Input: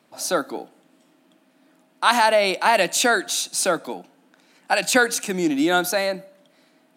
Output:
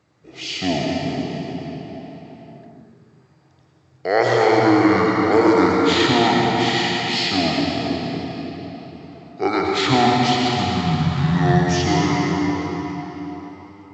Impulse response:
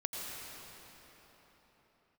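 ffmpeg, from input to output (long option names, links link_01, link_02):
-filter_complex "[0:a]asetrate=22050,aresample=44100[link_01];[1:a]atrim=start_sample=2205[link_02];[link_01][link_02]afir=irnorm=-1:irlink=0"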